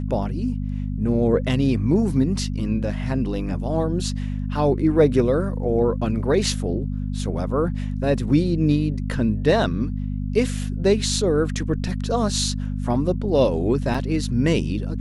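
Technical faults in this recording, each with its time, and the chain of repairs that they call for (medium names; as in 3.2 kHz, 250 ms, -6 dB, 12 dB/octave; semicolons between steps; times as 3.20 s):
hum 50 Hz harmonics 5 -26 dBFS
13.94 s: dropout 4.7 ms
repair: de-hum 50 Hz, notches 5; interpolate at 13.94 s, 4.7 ms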